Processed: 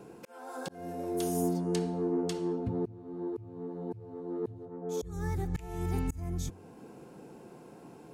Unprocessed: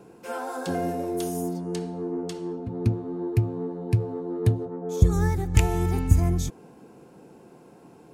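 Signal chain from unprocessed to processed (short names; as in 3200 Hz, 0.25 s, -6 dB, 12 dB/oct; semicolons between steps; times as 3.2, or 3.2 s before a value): de-hum 92.27 Hz, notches 15; auto swell 0.752 s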